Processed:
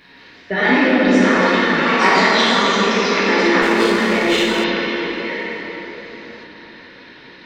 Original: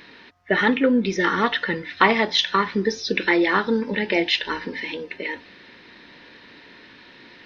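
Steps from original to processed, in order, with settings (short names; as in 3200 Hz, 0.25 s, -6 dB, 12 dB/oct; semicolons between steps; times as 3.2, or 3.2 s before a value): plate-style reverb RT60 4.5 s, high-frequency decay 0.65×, DRR -9.5 dB; echoes that change speed 0.17 s, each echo +3 st, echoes 2, each echo -6 dB; 3.62–4.64 running maximum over 3 samples; gain -4.5 dB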